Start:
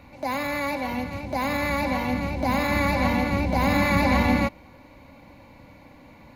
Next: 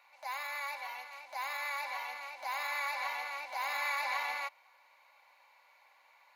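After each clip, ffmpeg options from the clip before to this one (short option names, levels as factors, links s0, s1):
-af "highpass=f=840:w=0.5412,highpass=f=840:w=1.3066,volume=0.376"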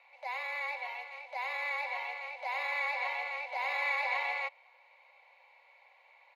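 -af "firequalizer=gain_entry='entry(130,0);entry(200,-20);entry(290,-18);entry(540,2);entry(1500,-10);entry(2200,2);entry(5900,-14);entry(15000,-22)':delay=0.05:min_phase=1,afreqshift=-22,volume=1.5"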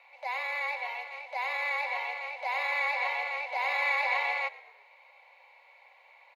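-filter_complex "[0:a]asplit=4[s0][s1][s2][s3];[s1]adelay=118,afreqshift=-40,volume=0.106[s4];[s2]adelay=236,afreqshift=-80,volume=0.0479[s5];[s3]adelay=354,afreqshift=-120,volume=0.0214[s6];[s0][s4][s5][s6]amix=inputs=4:normalize=0,volume=1.58"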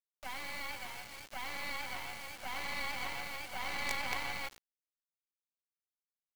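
-af "acrusher=bits=4:dc=4:mix=0:aa=0.000001,volume=0.562"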